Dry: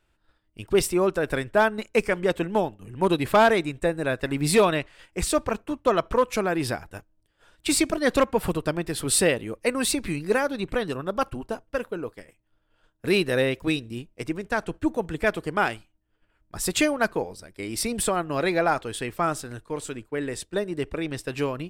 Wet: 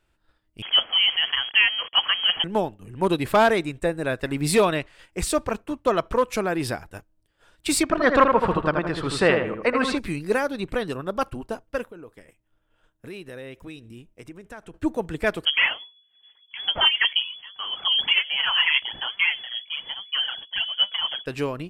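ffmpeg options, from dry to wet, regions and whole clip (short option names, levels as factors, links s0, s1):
-filter_complex "[0:a]asettb=1/sr,asplit=3[s0][s1][s2];[s0]atrim=end=0.624[s3];[s1]atrim=start=0.62:end=2.44,asetpts=PTS-STARTPTS,afade=t=in:d=0.004:c=qsin,afade=t=out:st=1.816:d=0.004:c=qsin,aeval=exprs='val(0)+0.5*0.0376*sgn(val(0))':c=same,highpass=110,lowpass=f=2900:t=q:w=0.5098,lowpass=f=2900:t=q:w=0.6013,lowpass=f=2900:t=q:w=0.9,lowpass=f=2900:t=q:w=2.563,afreqshift=-3400[s4];[s2]atrim=start=2.436[s5];[s3][s4]acrossfade=d=0.004:c1=hsin:c2=qsin[s6];[s6][s5]acrossfade=d=0.004:c1=qsin:c2=hsin,asettb=1/sr,asplit=3[s7][s8][s9];[s7]atrim=end=7.834[s10];[s8]atrim=start=7.83:end=9.98,asetpts=PTS-STARTPTS,afade=t=in:d=0.004:c=qsin,afade=t=out:st=2.146:d=0.004:c=qsin,lowpass=3800,equalizer=f=1200:w=1.1:g=9.5,asplit=2[s11][s12];[s12]adelay=80,lowpass=f=2400:p=1,volume=0.596,asplit=2[s13][s14];[s14]adelay=80,lowpass=f=2400:p=1,volume=0.39,asplit=2[s15][s16];[s16]adelay=80,lowpass=f=2400:p=1,volume=0.39,asplit=2[s17][s18];[s18]adelay=80,lowpass=f=2400:p=1,volume=0.39,asplit=2[s19][s20];[s20]adelay=80,lowpass=f=2400:p=1,volume=0.39[s21];[s11][s13][s15][s17][s19][s21]amix=inputs=6:normalize=0,atrim=end_sample=94815[s22];[s9]atrim=start=9.976[s23];[s10][s22]acrossfade=d=0.004:c1=hsin:c2=qsin[s24];[s24][s23]acrossfade=d=0.004:c1=qsin:c2=hsin,asettb=1/sr,asplit=3[s25][s26][s27];[s25]atrim=end=11.834[s28];[s26]atrim=start=11.83:end=14.74,asetpts=PTS-STARTPTS,afade=t=in:d=0.004:c=qsin,afade=t=out:st=2.906:d=0.004:c=qsin,equalizer=f=4500:w=7.7:g=-12.5,acompressor=threshold=0.00708:ratio=2.5:attack=3.2:release=140:knee=1:detection=peak[s29];[s27]atrim=start=14.736[s30];[s28][s29]acrossfade=d=0.004:c1=hsin:c2=qsin[s31];[s31][s30]acrossfade=d=0.004:c1=qsin:c2=hsin,asettb=1/sr,asplit=3[s32][s33][s34];[s32]atrim=end=15.454[s35];[s33]atrim=start=15.45:end=21.26,asetpts=PTS-STARTPTS,afade=t=in:d=0.004:c=qsin,afade=t=out:st=5.806:d=0.004:c=qsin,asplit=2[s36][s37];[s37]adelay=14,volume=0.316[s38];[s36][s38]amix=inputs=2:normalize=0,atrim=end_sample=256221,aphaser=in_gain=1:out_gain=1:delay=5:decay=0.67:speed=1.2:type=sinusoidal,lowpass=f=2900:t=q:w=0.5098,lowpass=f=2900:t=q:w=0.6013,lowpass=f=2900:t=q:w=0.9,lowpass=f=2900:t=q:w=2.563,afreqshift=-3400[s39];[s34]atrim=start=21.256[s40];[s35][s39]acrossfade=d=0.004:c1=hsin:c2=qsin[s41];[s41][s40]acrossfade=d=0.004:c1=qsin:c2=hsin"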